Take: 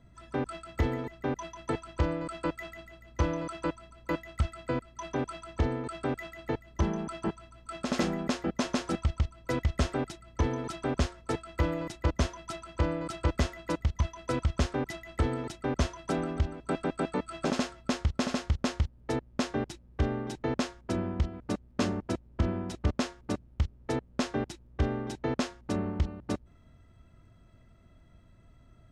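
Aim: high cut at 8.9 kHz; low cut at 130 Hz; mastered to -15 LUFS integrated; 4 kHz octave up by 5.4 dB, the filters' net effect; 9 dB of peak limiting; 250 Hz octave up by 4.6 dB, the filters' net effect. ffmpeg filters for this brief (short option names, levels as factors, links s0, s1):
-af "highpass=130,lowpass=8900,equalizer=f=250:t=o:g=6,equalizer=f=4000:t=o:g=7,volume=8.91,alimiter=limit=0.841:level=0:latency=1"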